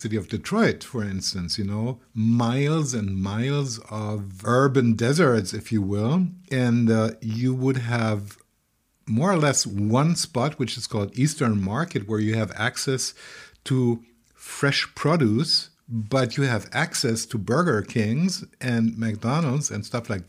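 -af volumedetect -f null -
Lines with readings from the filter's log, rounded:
mean_volume: -23.6 dB
max_volume: -6.8 dB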